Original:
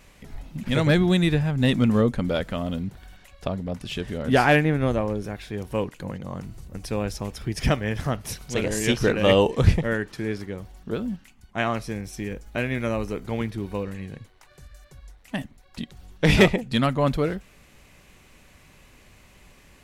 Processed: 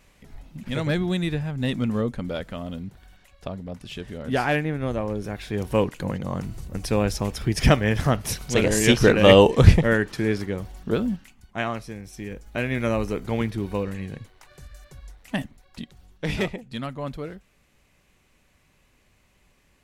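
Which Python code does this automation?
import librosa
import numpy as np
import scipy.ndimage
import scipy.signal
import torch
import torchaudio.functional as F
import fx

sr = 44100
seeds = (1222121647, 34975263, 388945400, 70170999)

y = fx.gain(x, sr, db=fx.line((4.79, -5.0), (5.64, 5.0), (10.98, 5.0), (11.97, -6.0), (12.89, 2.5), (15.37, 2.5), (16.35, -10.0)))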